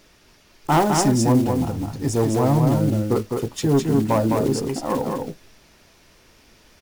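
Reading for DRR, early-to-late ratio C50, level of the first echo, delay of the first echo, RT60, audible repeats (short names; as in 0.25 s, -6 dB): none, none, -4.0 dB, 0.208 s, none, 1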